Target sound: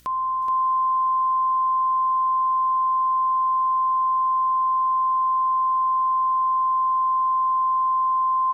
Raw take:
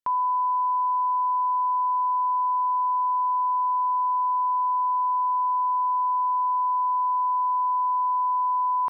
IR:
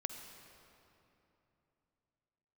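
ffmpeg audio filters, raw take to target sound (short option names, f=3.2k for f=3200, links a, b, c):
-filter_complex "[0:a]bandreject=f=820:w=5,acontrast=31,alimiter=limit=-18.5dB:level=0:latency=1,acompressor=mode=upward:threshold=-31dB:ratio=2.5,aeval=exprs='val(0)+0.00224*(sin(2*PI*60*n/s)+sin(2*PI*2*60*n/s)/2+sin(2*PI*3*60*n/s)/3+sin(2*PI*4*60*n/s)/4+sin(2*PI*5*60*n/s)/5)':c=same,aecho=1:1:441:0.473,asplit=2[a][b];[1:a]atrim=start_sample=2205,asetrate=61740,aresample=44100[c];[b][c]afir=irnorm=-1:irlink=0,volume=-11.5dB[d];[a][d]amix=inputs=2:normalize=0,asetrate=45938,aresample=44100,volume=-4.5dB"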